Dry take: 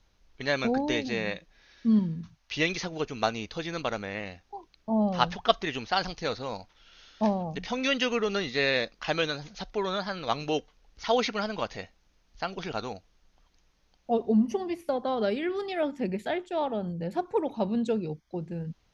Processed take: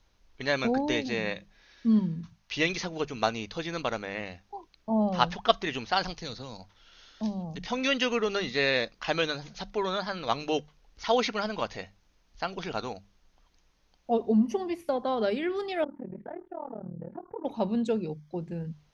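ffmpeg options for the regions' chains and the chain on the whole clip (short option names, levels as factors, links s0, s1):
-filter_complex "[0:a]asettb=1/sr,asplit=3[s0][s1][s2];[s0]atrim=end=6.214[s3];[s1]atrim=start=6.21:end=7.66,asetpts=PTS-STARTPTS,afade=t=in:d=0.004:c=qsin,afade=t=out:st=1.446:d=0.004:c=qsin,acrossover=split=260|3000[s4][s5][s6];[s5]acompressor=threshold=0.00794:ratio=6:attack=3.2:release=140:knee=2.83:detection=peak[s7];[s4][s7][s6]amix=inputs=3:normalize=0,equalizer=f=2500:w=4:g=-3.5[s8];[s2]atrim=start=7.656[s9];[s3][s8]acrossfade=d=0.004:c1=hsin:c2=qsin[s10];[s10][s9]acrossfade=d=0.004:c1=qsin:c2=hsin,asettb=1/sr,asplit=3[s11][s12][s13];[s11]atrim=end=15.844[s14];[s12]atrim=start=15.84:end=17.45,asetpts=PTS-STARTPTS,afade=t=in:d=0.004:c=qsin,afade=t=out:st=1.606:d=0.004:c=qsin,lowpass=f=1400:w=0.5412,lowpass=f=1400:w=1.3066,acompressor=threshold=0.0224:ratio=3:attack=3.2:release=140:knee=1:detection=peak,tremolo=f=38:d=0.974[s15];[s13]atrim=start=17.446[s16];[s14][s15]acrossfade=d=0.004:c1=hsin:c2=qsin[s17];[s17][s16]acrossfade=d=0.004:c1=qsin:c2=hsin,equalizer=f=1000:t=o:w=0.22:g=2,bandreject=f=50:t=h:w=6,bandreject=f=100:t=h:w=6,bandreject=f=150:t=h:w=6,bandreject=f=200:t=h:w=6"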